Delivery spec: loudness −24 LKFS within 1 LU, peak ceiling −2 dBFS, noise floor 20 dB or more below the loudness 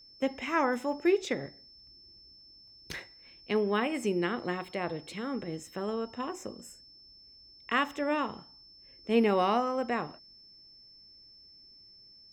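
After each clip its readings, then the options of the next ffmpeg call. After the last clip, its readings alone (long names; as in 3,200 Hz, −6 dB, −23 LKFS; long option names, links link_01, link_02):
interfering tone 5,300 Hz; level of the tone −53 dBFS; integrated loudness −31.5 LKFS; sample peak −13.5 dBFS; target loudness −24.0 LKFS
→ -af "bandreject=frequency=5300:width=30"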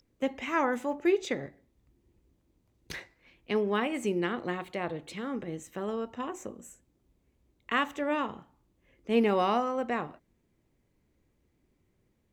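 interfering tone none found; integrated loudness −31.0 LKFS; sample peak −13.5 dBFS; target loudness −24.0 LKFS
→ -af "volume=7dB"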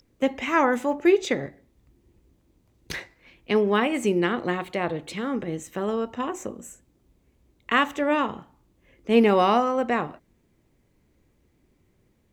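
integrated loudness −24.5 LKFS; sample peak −6.5 dBFS; background noise floor −66 dBFS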